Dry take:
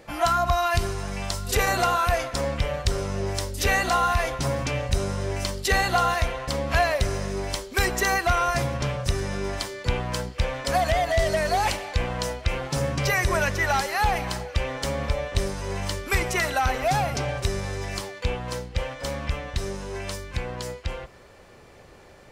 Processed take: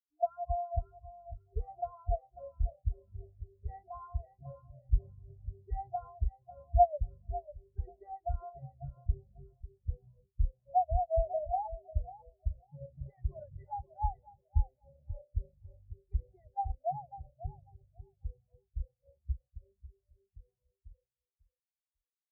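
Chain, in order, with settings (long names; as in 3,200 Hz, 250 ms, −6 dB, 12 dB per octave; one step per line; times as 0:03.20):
flat-topped bell 2,900 Hz −8 dB 2.8 octaves
repeating echo 546 ms, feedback 55%, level −4 dB
every bin expanded away from the loudest bin 4 to 1
level −4 dB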